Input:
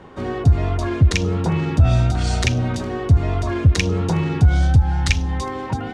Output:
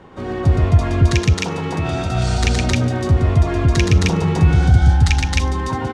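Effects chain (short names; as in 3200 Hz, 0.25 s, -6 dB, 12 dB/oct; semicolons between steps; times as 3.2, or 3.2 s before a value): 1.06–2.14 HPF 500 Hz -> 220 Hz 6 dB/oct; loudspeakers at several distances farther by 41 m -3 dB, 91 m 0 dB; gain -1 dB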